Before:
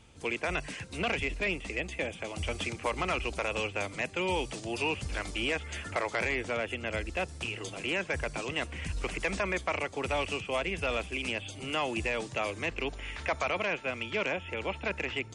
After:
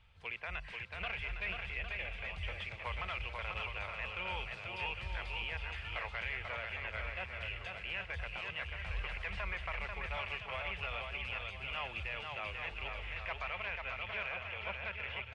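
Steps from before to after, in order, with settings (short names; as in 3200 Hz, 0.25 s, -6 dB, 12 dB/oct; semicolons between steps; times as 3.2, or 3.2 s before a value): passive tone stack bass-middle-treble 10-0-10; limiter -27.5 dBFS, peak gain reduction 4 dB; air absorption 410 m; bouncing-ball echo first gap 0.49 s, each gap 0.65×, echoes 5; gain +3 dB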